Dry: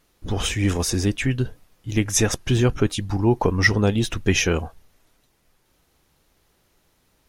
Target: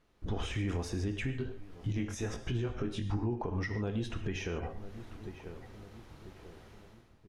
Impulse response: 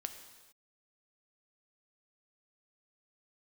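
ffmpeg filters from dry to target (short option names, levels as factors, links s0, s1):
-filter_complex "[0:a]acompressor=threshold=0.02:ratio=3[s0];[1:a]atrim=start_sample=2205,atrim=end_sample=6615[s1];[s0][s1]afir=irnorm=-1:irlink=0,dynaudnorm=f=100:g=9:m=5.96,asplit=2[s2][s3];[s3]adelay=992,lowpass=f=1400:p=1,volume=0.0708,asplit=2[s4][s5];[s5]adelay=992,lowpass=f=1400:p=1,volume=0.47,asplit=2[s6][s7];[s7]adelay=992,lowpass=f=1400:p=1,volume=0.47[s8];[s2][s4][s6][s8]amix=inputs=4:normalize=0,asplit=3[s9][s10][s11];[s9]afade=t=out:st=1.3:d=0.02[s12];[s10]flanger=delay=17:depth=5.6:speed=1.2,afade=t=in:st=1.3:d=0.02,afade=t=out:st=3.39:d=0.02[s13];[s11]afade=t=in:st=3.39:d=0.02[s14];[s12][s13][s14]amix=inputs=3:normalize=0,alimiter=limit=0.0794:level=0:latency=1:release=471,aemphasis=mode=reproduction:type=75fm,volume=0.668"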